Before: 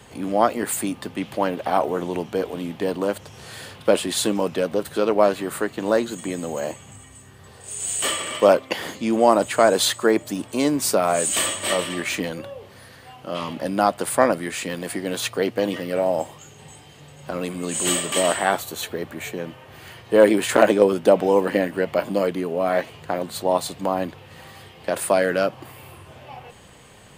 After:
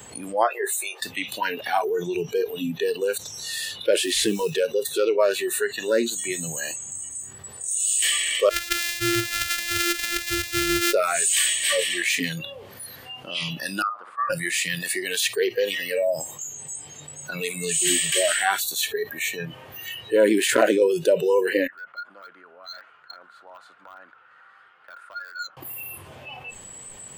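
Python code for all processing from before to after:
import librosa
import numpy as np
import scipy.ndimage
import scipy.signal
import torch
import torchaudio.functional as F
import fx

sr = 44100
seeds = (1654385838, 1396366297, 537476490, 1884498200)

y = fx.chain(x, sr, fx.brickwall_highpass(low_hz=340.0),
    fx.high_shelf(hz=2300.0, db=-9.5),
    fx.doubler(ms=13.0, db=-7.5), at=(0.43, 1.01))
y = fx.chain(y, sr, fx.cvsd(bps=64000),
    fx.mod_noise(seeds[0], snr_db=29), at=(3.98, 4.57))
y = fx.chain(y, sr, fx.sample_sort(block=128),
    fx.peak_eq(hz=170.0, db=-8.0, octaves=2.8),
    fx.over_compress(threshold_db=-24.0, ratio=-0.5), at=(8.49, 10.93))
y = fx.chain(y, sr, fx.bandpass_q(hz=1200.0, q=6.1),
    fx.air_absorb(metres=52.0),
    fx.room_flutter(wall_m=11.2, rt60_s=0.38), at=(13.82, 14.3))
y = fx.chain(y, sr, fx.bandpass_q(hz=1400.0, q=16.0),
    fx.clip_hard(threshold_db=-38.0), at=(21.67, 25.57))
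y = fx.noise_reduce_blind(y, sr, reduce_db=24)
y = fx.low_shelf(y, sr, hz=130.0, db=-4.0)
y = fx.env_flatten(y, sr, amount_pct=50)
y = F.gain(torch.from_numpy(y), -4.5).numpy()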